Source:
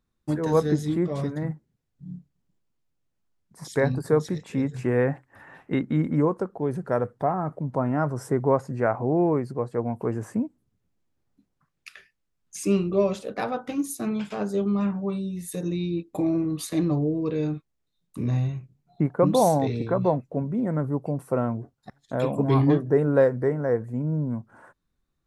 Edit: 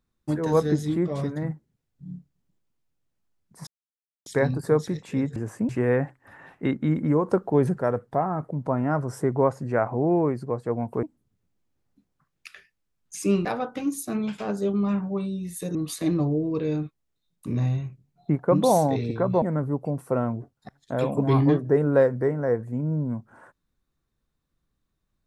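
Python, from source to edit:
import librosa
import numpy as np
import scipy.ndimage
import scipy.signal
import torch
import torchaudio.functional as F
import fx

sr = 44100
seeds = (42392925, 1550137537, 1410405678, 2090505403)

y = fx.edit(x, sr, fx.insert_silence(at_s=3.67, length_s=0.59),
    fx.clip_gain(start_s=6.34, length_s=0.52, db=6.5),
    fx.move(start_s=10.11, length_s=0.33, to_s=4.77),
    fx.cut(start_s=12.86, length_s=0.51),
    fx.cut(start_s=15.67, length_s=0.79),
    fx.cut(start_s=20.13, length_s=0.5), tone=tone)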